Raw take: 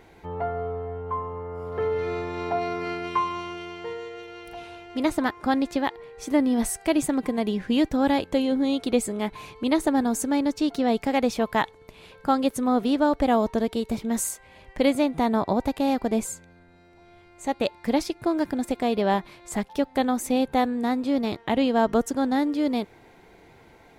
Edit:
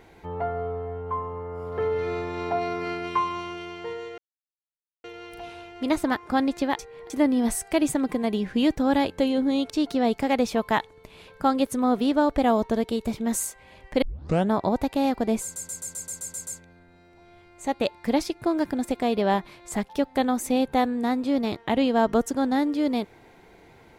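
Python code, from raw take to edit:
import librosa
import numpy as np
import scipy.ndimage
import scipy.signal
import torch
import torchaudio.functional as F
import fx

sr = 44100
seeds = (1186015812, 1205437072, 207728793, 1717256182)

y = fx.edit(x, sr, fx.insert_silence(at_s=4.18, length_s=0.86),
    fx.reverse_span(start_s=5.93, length_s=0.31),
    fx.cut(start_s=8.84, length_s=1.7),
    fx.tape_start(start_s=14.86, length_s=0.49),
    fx.stutter(start_s=16.27, slice_s=0.13, count=9), tone=tone)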